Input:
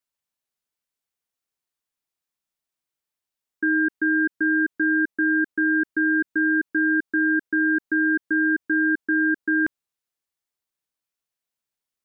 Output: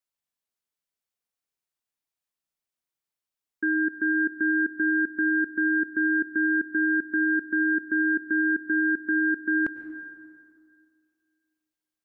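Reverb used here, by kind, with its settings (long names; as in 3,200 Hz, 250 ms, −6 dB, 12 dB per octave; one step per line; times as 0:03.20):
dense smooth reverb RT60 2.2 s, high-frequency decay 0.7×, pre-delay 90 ms, DRR 10.5 dB
level −3.5 dB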